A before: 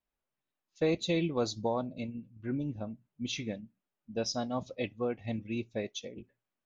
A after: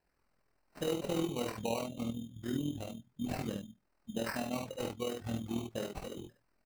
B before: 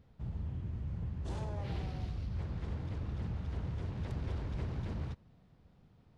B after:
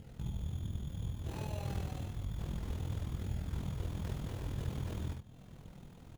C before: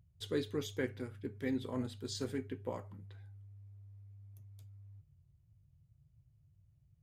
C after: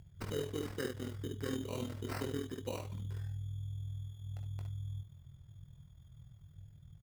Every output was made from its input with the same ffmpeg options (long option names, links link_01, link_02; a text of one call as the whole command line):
ffmpeg -i in.wav -filter_complex "[0:a]acompressor=threshold=-57dB:ratio=2,acrusher=samples=13:mix=1:aa=0.000001,flanger=delay=0.4:depth=9.7:regen=-60:speed=0.3:shape=sinusoidal,asplit=2[link_01][link_02];[link_02]aecho=0:1:21|61:0.335|0.631[link_03];[link_01][link_03]amix=inputs=2:normalize=0,tremolo=f=41:d=0.621,volume=16.5dB" out.wav